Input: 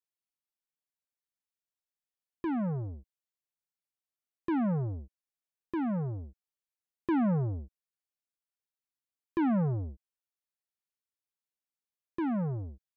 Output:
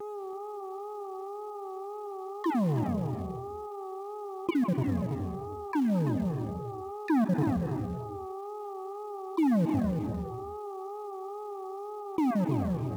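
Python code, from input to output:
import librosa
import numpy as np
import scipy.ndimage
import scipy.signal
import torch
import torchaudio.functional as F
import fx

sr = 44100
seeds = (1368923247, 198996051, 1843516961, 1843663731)

p1 = fx.spec_dropout(x, sr, seeds[0], share_pct=38)
p2 = fx.dmg_buzz(p1, sr, base_hz=400.0, harmonics=3, level_db=-56.0, tilt_db=-8, odd_only=False)
p3 = fx.highpass(p2, sr, hz=150.0, slope=6)
p4 = p3 + fx.echo_single(p3, sr, ms=329, db=-9.5, dry=0)
p5 = fx.wow_flutter(p4, sr, seeds[1], rate_hz=2.1, depth_cents=88.0)
p6 = fx.notch(p5, sr, hz=1400.0, q=8.3)
p7 = fx.rev_gated(p6, sr, seeds[2], gate_ms=330, shape='rising', drr_db=10.5)
p8 = fx.quant_float(p7, sr, bits=2)
p9 = p7 + F.gain(torch.from_numpy(p8), -7.0).numpy()
y = fx.env_flatten(p9, sr, amount_pct=50)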